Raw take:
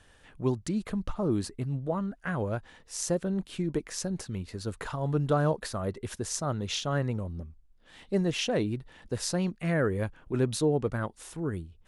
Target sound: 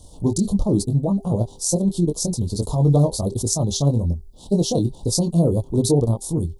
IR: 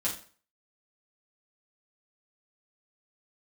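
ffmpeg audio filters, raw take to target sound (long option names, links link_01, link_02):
-filter_complex "[0:a]highshelf=frequency=5000:gain=10.5,asplit=2[link_01][link_02];[link_02]acompressor=threshold=-38dB:ratio=12,volume=0dB[link_03];[link_01][link_03]amix=inputs=2:normalize=0,lowshelf=frequency=240:gain=8,asplit=2[link_04][link_05];[link_05]adelay=35,volume=-5dB[link_06];[link_04][link_06]amix=inputs=2:normalize=0,atempo=1.8,asuperstop=centerf=1900:order=8:qfactor=0.68,bandreject=frequency=395.2:width_type=h:width=4,bandreject=frequency=790.4:width_type=h:width=4,volume=3.5dB"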